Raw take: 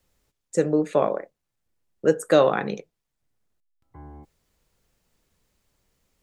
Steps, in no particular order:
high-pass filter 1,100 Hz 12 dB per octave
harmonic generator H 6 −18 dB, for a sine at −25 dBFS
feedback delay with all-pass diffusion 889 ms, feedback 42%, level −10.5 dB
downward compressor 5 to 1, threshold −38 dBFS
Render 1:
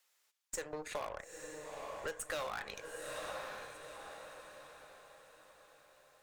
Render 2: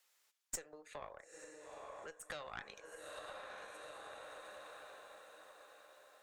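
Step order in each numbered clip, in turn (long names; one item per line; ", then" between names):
high-pass filter, then harmonic generator, then feedback delay with all-pass diffusion, then downward compressor
feedback delay with all-pass diffusion, then downward compressor, then high-pass filter, then harmonic generator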